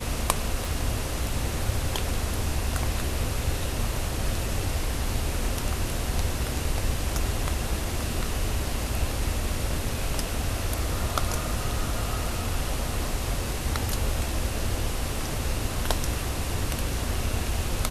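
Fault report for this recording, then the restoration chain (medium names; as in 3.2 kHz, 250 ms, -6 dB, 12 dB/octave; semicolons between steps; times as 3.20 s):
0.65 s: pop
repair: de-click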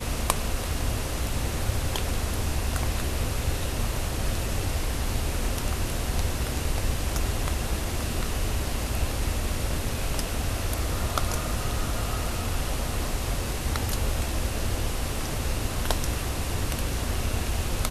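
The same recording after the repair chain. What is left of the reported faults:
nothing left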